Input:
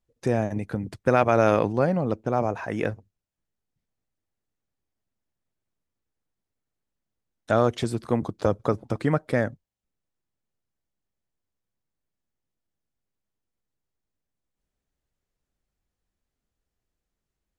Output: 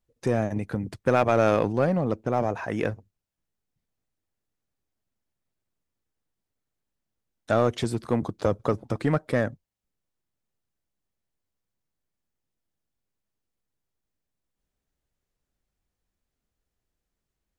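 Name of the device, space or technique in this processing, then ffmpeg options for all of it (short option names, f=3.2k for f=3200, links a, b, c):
parallel distortion: -filter_complex "[0:a]asplit=2[a][b];[b]asoftclip=type=hard:threshold=-20.5dB,volume=-5dB[c];[a][c]amix=inputs=2:normalize=0,volume=-3.5dB"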